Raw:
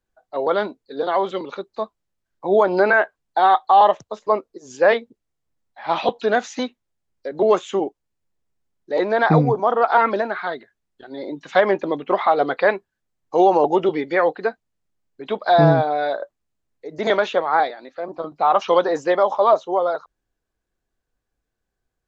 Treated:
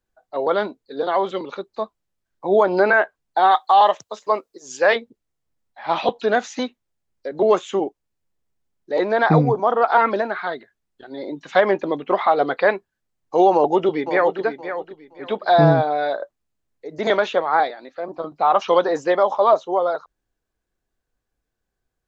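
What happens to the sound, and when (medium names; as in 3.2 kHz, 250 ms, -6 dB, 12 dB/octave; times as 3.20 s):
3.51–4.96 s: tilt EQ +2.5 dB/octave
13.54–14.41 s: echo throw 520 ms, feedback 25%, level -10 dB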